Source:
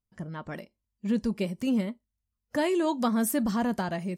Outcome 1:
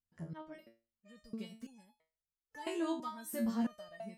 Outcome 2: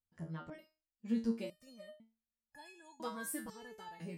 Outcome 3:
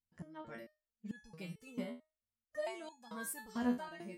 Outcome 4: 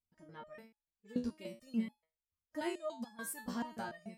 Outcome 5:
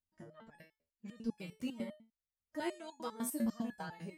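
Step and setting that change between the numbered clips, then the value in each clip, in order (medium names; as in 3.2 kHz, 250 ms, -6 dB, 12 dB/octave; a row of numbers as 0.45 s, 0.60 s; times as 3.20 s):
resonator arpeggio, rate: 3 Hz, 2 Hz, 4.5 Hz, 6.9 Hz, 10 Hz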